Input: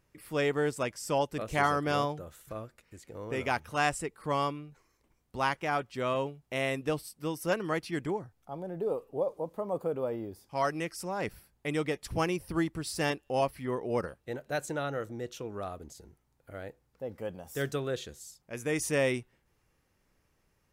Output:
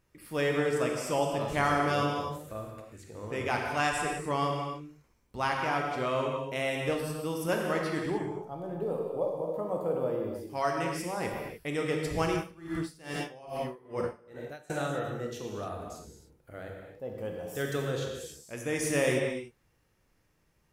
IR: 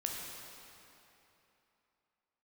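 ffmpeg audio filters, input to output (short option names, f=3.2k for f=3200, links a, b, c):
-filter_complex "[1:a]atrim=start_sample=2205,afade=t=out:st=0.36:d=0.01,atrim=end_sample=16317[a];[0:a][a]afir=irnorm=-1:irlink=0,asettb=1/sr,asplit=3[b][c][d];[b]atrim=end=12.364[e];[c]atrim=start=12.36:end=14.7,asetpts=PTS-STARTPTS,afade=t=in:d=0.004:c=qsin,afade=t=out:st=2.336:d=0.004:c=qsin,aeval=exprs='val(0)*pow(10,-23*(0.5-0.5*cos(2*PI*2.4*n/s))/20)':c=same[f];[d]atrim=start=14.696[g];[e][f]acrossfade=d=0.004:c1=hsin:c2=qsin[h];[h][g]acrossfade=d=0.004:c1=qsin:c2=hsin"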